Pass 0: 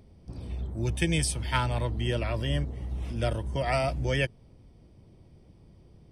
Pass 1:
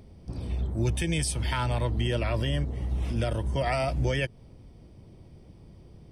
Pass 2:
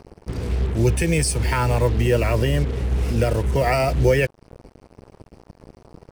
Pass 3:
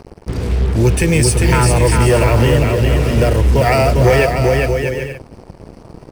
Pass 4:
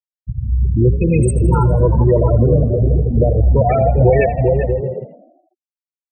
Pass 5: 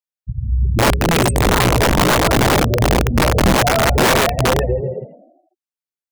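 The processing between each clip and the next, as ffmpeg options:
-af "alimiter=limit=0.075:level=0:latency=1:release=139,volume=1.68"
-af "superequalizer=7b=2.24:13b=0.282,acrusher=bits=6:mix=0:aa=0.5,volume=2.37"
-filter_complex "[0:a]asplit=2[s0][s1];[s1]aecho=0:1:400|640|784|870.4|922.2:0.631|0.398|0.251|0.158|0.1[s2];[s0][s2]amix=inputs=2:normalize=0,asoftclip=type=tanh:threshold=0.316,volume=2.24"
-filter_complex "[0:a]afftfilt=real='re*gte(hypot(re,im),0.631)':imag='im*gte(hypot(re,im),0.631)':win_size=1024:overlap=0.75,asplit=7[s0][s1][s2][s3][s4][s5][s6];[s1]adelay=82,afreqshift=38,volume=0.15[s7];[s2]adelay=164,afreqshift=76,volume=0.0902[s8];[s3]adelay=246,afreqshift=114,volume=0.0537[s9];[s4]adelay=328,afreqshift=152,volume=0.0324[s10];[s5]adelay=410,afreqshift=190,volume=0.0195[s11];[s6]adelay=492,afreqshift=228,volume=0.0116[s12];[s0][s7][s8][s9][s10][s11][s12]amix=inputs=7:normalize=0"
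-af "aeval=exprs='(mod(2.37*val(0)+1,2)-1)/2.37':c=same,volume=0.891"

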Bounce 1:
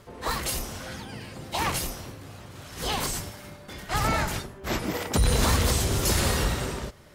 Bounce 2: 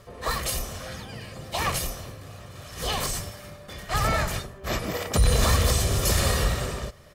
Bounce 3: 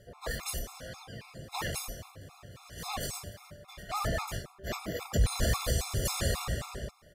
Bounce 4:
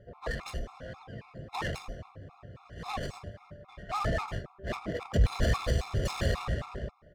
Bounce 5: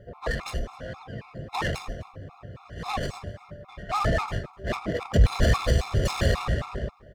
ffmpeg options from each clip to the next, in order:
-af "aecho=1:1:1.7:0.42"
-af "afftfilt=real='re*gt(sin(2*PI*3.7*pts/sr)*(1-2*mod(floor(b*sr/1024/690),2)),0)':imag='im*gt(sin(2*PI*3.7*pts/sr)*(1-2*mod(floor(b*sr/1024/690),2)),0)':win_size=1024:overlap=0.75,volume=0.562"
-af "adynamicsmooth=sensitivity=7:basefreq=1700,volume=1.26"
-af "aecho=1:1:253:0.0668,volume=2"

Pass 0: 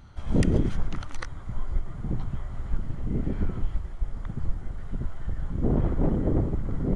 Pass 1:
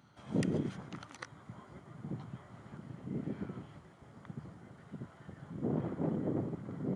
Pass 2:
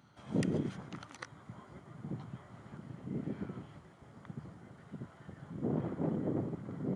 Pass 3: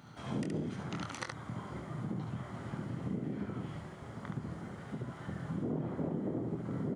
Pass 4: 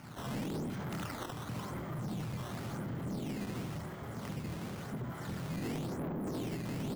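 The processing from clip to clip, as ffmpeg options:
-af "highpass=f=130:w=0.5412,highpass=f=130:w=1.3066,volume=0.422"
-af anull
-filter_complex "[0:a]acompressor=threshold=0.00708:ratio=6,asplit=2[s0][s1];[s1]aecho=0:1:25|71:0.447|0.668[s2];[s0][s2]amix=inputs=2:normalize=0,volume=2.37"
-af "acrusher=samples=11:mix=1:aa=0.000001:lfo=1:lforange=17.6:lforate=0.94,asoftclip=type=tanh:threshold=0.0106,volume=1.78"

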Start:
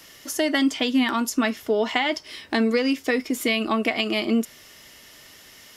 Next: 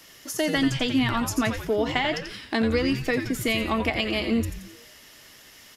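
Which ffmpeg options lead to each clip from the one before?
-filter_complex "[0:a]asplit=7[s0][s1][s2][s3][s4][s5][s6];[s1]adelay=87,afreqshift=-140,volume=0.398[s7];[s2]adelay=174,afreqshift=-280,volume=0.191[s8];[s3]adelay=261,afreqshift=-420,volume=0.0912[s9];[s4]adelay=348,afreqshift=-560,volume=0.0442[s10];[s5]adelay=435,afreqshift=-700,volume=0.0211[s11];[s6]adelay=522,afreqshift=-840,volume=0.0101[s12];[s0][s7][s8][s9][s10][s11][s12]amix=inputs=7:normalize=0,volume=0.75"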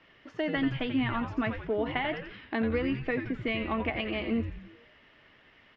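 -af "lowpass=f=2800:w=0.5412,lowpass=f=2800:w=1.3066,volume=0.531"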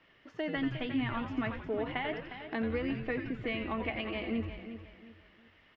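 -af "aecho=1:1:357|714|1071:0.282|0.0902|0.0289,volume=0.596"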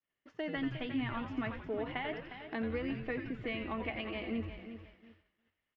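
-af "agate=range=0.0224:threshold=0.00355:ratio=3:detection=peak,volume=0.708"

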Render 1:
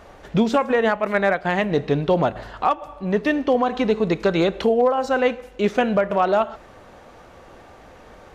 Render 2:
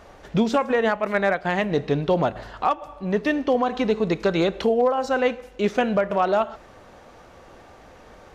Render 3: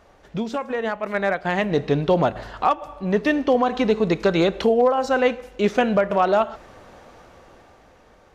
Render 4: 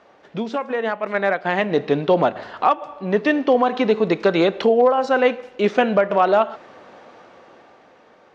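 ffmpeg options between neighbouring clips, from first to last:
-af "equalizer=f=5500:t=o:w=0.77:g=2.5,volume=0.794"
-af "dynaudnorm=f=280:g=9:m=3.76,volume=0.473"
-af "highpass=210,lowpass=4500,volume=1.33"

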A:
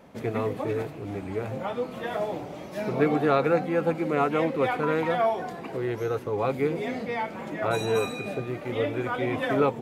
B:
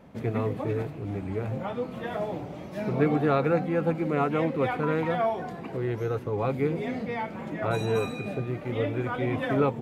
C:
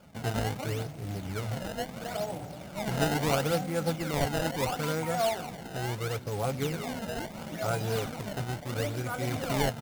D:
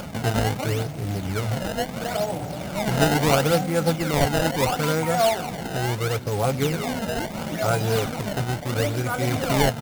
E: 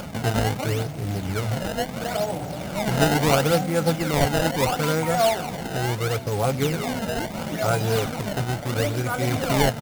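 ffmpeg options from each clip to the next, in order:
-af "bass=f=250:g=7,treble=f=4000:g=-4,volume=0.75"
-af "acrusher=samples=22:mix=1:aa=0.000001:lfo=1:lforange=35.2:lforate=0.74,aecho=1:1:1.4:0.4,acrusher=bits=3:mode=log:mix=0:aa=0.000001,volume=0.631"
-af "acompressor=mode=upward:threshold=0.0251:ratio=2.5,volume=2.51"
-af "aecho=1:1:918:0.0794"

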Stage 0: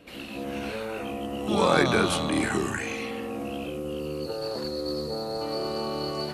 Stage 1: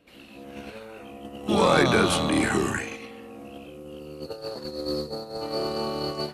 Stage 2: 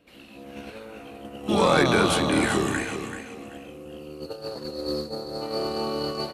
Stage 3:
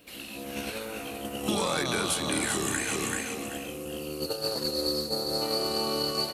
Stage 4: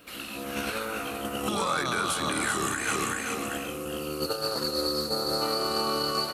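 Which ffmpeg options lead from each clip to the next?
-af "agate=range=0.251:threshold=0.0316:ratio=16:detection=peak,asoftclip=type=tanh:threshold=0.266,volume=1.41"
-af "aecho=1:1:385|770|1155:0.355|0.0852|0.0204"
-af "crystalizer=i=3.5:c=0,acompressor=threshold=0.0398:ratio=12,volume=1.41"
-af "equalizer=f=1300:t=o:w=0.58:g=11,alimiter=limit=0.106:level=0:latency=1:release=179,volume=1.26"

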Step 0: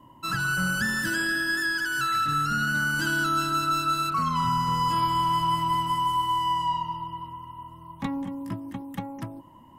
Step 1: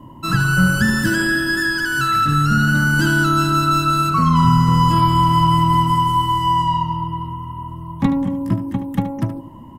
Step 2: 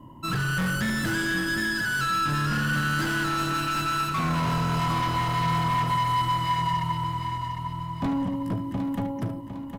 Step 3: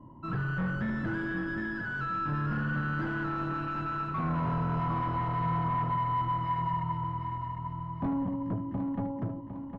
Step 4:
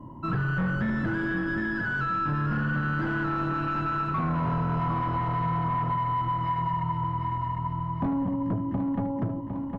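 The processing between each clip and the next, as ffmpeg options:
-filter_complex "[0:a]lowshelf=f=500:g=11,asplit=2[s0][s1];[s1]aecho=0:1:74:0.266[s2];[s0][s2]amix=inputs=2:normalize=0,volume=1.88"
-af "volume=7.08,asoftclip=hard,volume=0.141,aecho=1:1:756|1512|2268|3024|3780:0.398|0.163|0.0669|0.0274|0.0112,volume=0.473"
-af "lowpass=1300,volume=0.631"
-af "acompressor=threshold=0.0251:ratio=6,volume=2.37"

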